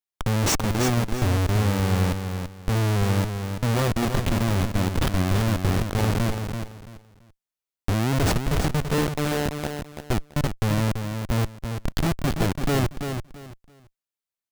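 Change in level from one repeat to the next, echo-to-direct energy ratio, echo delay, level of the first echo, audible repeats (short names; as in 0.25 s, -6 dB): -12.5 dB, -6.5 dB, 0.335 s, -7.0 dB, 3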